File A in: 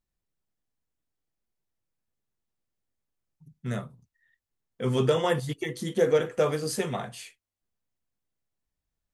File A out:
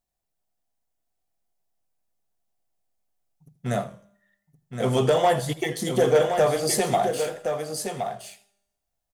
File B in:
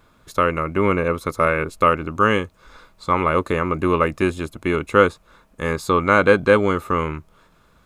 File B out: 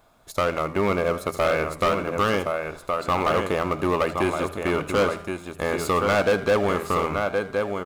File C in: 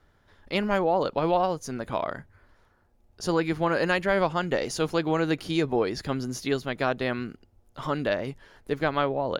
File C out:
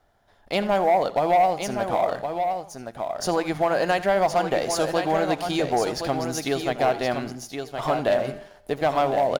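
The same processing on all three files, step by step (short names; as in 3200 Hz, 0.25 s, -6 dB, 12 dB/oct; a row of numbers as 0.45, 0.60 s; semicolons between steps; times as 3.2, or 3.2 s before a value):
bell 710 Hz +14.5 dB 0.53 oct; resonator 200 Hz, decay 0.95 s, mix 50%; sample leveller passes 1; in parallel at +2.5 dB: compressor, threshold -26 dBFS; on the sum: high shelf 4600 Hz +8 dB; de-hum 82.21 Hz, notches 2; on a send: echo 1.069 s -7 dB; on the sum: hard clip -9.5 dBFS; warbling echo 82 ms, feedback 30%, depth 140 cents, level -16 dB; match loudness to -24 LUFS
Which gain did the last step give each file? -2.0, -6.0, -4.5 dB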